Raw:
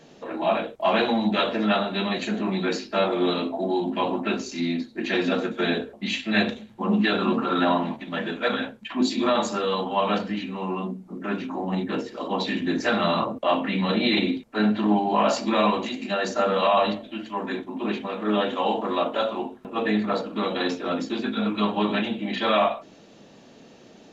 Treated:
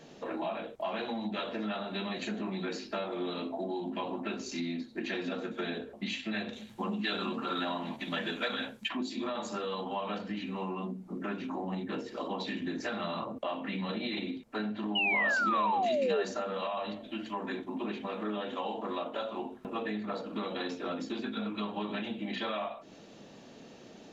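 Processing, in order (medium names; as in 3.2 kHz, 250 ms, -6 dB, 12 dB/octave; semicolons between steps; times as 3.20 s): compression 6:1, threshold -31 dBFS, peak gain reduction 14 dB; 6.53–8.89 s: treble shelf 2.7 kHz +11.5 dB; 14.95–16.23 s: painted sound fall 390–3000 Hz -27 dBFS; trim -2 dB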